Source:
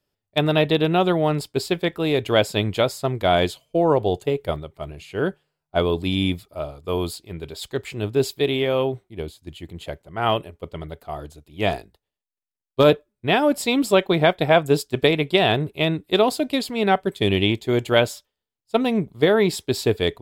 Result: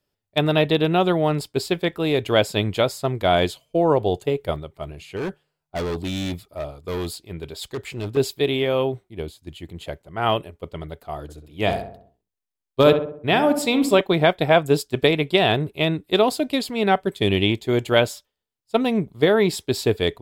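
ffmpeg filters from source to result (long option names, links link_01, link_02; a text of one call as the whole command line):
ffmpeg -i in.wav -filter_complex "[0:a]asettb=1/sr,asplit=3[link_01][link_02][link_03];[link_01]atrim=end=5.164[link_04];[link_02]atrim=start=5.16:end=8.17,asetpts=PTS-STARTPTS,afade=type=in:duration=0.004:curve=qsin,afade=type=out:start_time=3.006:duration=0.004:curve=qsin,volume=23.5dB,asoftclip=hard,volume=-23.5dB[link_05];[link_03]atrim=start=8.166[link_06];[link_04][link_05]acrossfade=duration=0.004:curve1=hsin:curve2=qsin[link_07];[link_07][link_06]acrossfade=duration=0.004:curve1=qsin:curve2=hsin,asettb=1/sr,asplit=3[link_08][link_09][link_10];[link_08]atrim=end=11.224[link_11];[link_09]atrim=start=11.22:end=14.01,asetpts=PTS-STARTPTS,afade=type=in:duration=0.004:curve=qsin,afade=type=out:start_time=2.786:duration=0.004:curve=qsin,asplit=2[link_12][link_13];[link_13]adelay=65,lowpass=frequency=1500:poles=1,volume=-7dB,asplit=2[link_14][link_15];[link_15]adelay=65,lowpass=frequency=1500:poles=1,volume=0.51,asplit=2[link_16][link_17];[link_17]adelay=65,lowpass=frequency=1500:poles=1,volume=0.51,asplit=2[link_18][link_19];[link_19]adelay=65,lowpass=frequency=1500:poles=1,volume=0.51,asplit=2[link_20][link_21];[link_21]adelay=65,lowpass=frequency=1500:poles=1,volume=0.51,asplit=2[link_22][link_23];[link_23]adelay=65,lowpass=frequency=1500:poles=1,volume=0.51[link_24];[link_12][link_14][link_16][link_18][link_20][link_22][link_24]amix=inputs=7:normalize=0,atrim=end_sample=123039[link_25];[link_10]atrim=start=14.006[link_26];[link_11][link_25]acrossfade=duration=0.004:curve1=hsin:curve2=qsin[link_27];[link_27][link_26]acrossfade=duration=0.004:curve1=qsin:curve2=hsin" out.wav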